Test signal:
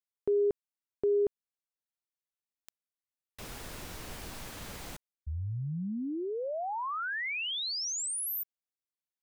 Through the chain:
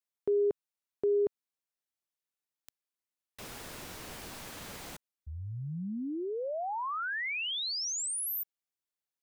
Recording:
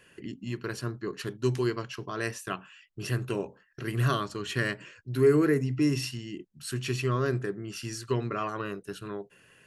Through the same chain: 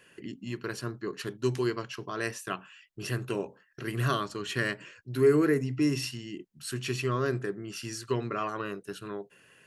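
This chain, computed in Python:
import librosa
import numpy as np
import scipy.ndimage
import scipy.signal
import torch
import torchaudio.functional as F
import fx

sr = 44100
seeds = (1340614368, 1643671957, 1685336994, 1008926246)

y = fx.low_shelf(x, sr, hz=85.0, db=-10.5)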